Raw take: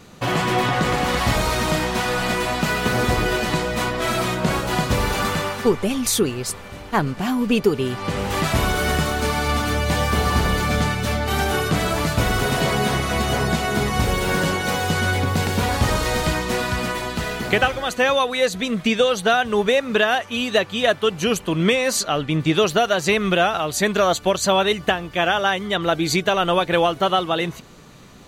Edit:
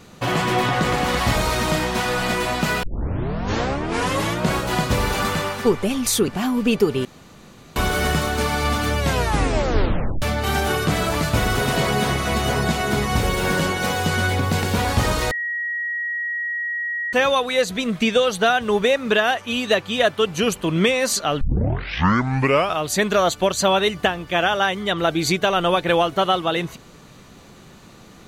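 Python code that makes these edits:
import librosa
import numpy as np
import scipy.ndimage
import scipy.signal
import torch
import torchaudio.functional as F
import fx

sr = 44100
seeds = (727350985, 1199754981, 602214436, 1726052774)

y = fx.edit(x, sr, fx.tape_start(start_s=2.83, length_s=1.61),
    fx.cut(start_s=6.28, length_s=0.84),
    fx.room_tone_fill(start_s=7.89, length_s=0.71),
    fx.tape_stop(start_s=9.83, length_s=1.23),
    fx.bleep(start_s=16.15, length_s=1.82, hz=1900.0, db=-22.5),
    fx.tape_start(start_s=22.25, length_s=1.39), tone=tone)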